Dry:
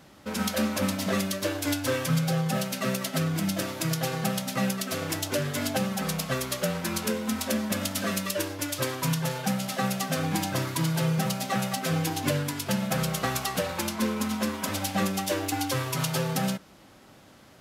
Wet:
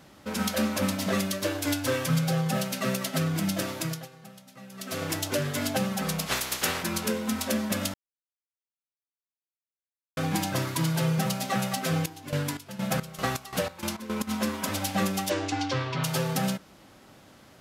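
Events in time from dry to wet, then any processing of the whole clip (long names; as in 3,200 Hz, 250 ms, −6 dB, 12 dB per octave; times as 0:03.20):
0:03.76–0:05.02: duck −20 dB, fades 0.32 s
0:06.26–0:06.82: ceiling on every frequency bin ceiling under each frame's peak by 22 dB
0:07.94–0:10.17: silence
0:11.97–0:14.27: square-wave tremolo 1.7 Hz → 4.2 Hz
0:15.29–0:16.03: low-pass filter 8,200 Hz → 4,000 Hz 24 dB per octave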